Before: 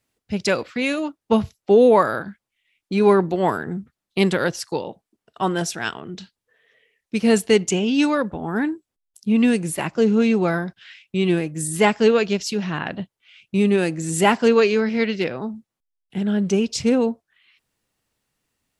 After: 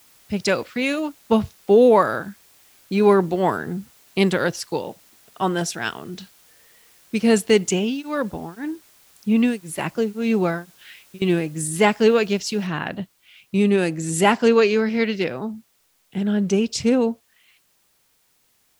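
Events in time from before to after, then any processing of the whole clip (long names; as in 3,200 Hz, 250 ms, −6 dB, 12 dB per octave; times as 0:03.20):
0:07.77–0:11.22: tremolo along a rectified sine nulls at 1.9 Hz
0:12.67: noise floor change −54 dB −64 dB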